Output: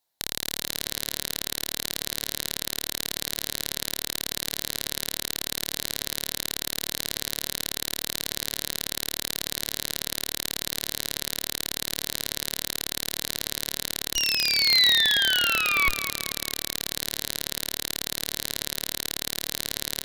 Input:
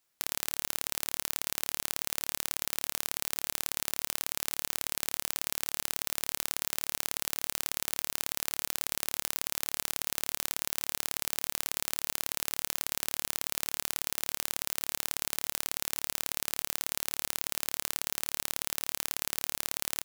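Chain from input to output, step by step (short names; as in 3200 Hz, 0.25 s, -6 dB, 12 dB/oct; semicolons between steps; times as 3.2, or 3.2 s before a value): painted sound fall, 14.15–15.89, 1100–2900 Hz -23 dBFS; bell 820 Hz +10 dB 1.1 oct; added harmonics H 3 -9 dB, 6 -6 dB, 7 -22 dB, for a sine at 0 dBFS; soft clip -3 dBFS, distortion -13 dB; thirty-one-band EQ 1250 Hz -10 dB, 2500 Hz -5 dB, 4000 Hz +9 dB, 12500 Hz +6 dB; tape echo 0.214 s, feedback 44%, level -9 dB, low-pass 2900 Hz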